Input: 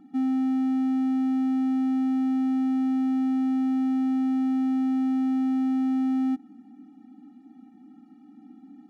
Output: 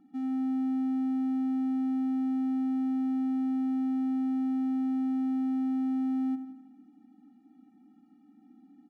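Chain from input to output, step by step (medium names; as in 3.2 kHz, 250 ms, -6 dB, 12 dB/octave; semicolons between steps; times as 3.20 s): feedback delay 84 ms, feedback 57%, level -12 dB; trim -8.5 dB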